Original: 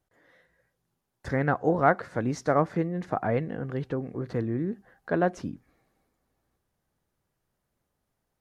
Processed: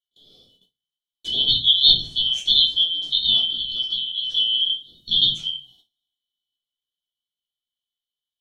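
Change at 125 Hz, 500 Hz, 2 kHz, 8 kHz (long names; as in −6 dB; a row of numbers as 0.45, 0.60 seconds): −11.5 dB, below −20 dB, below −20 dB, can't be measured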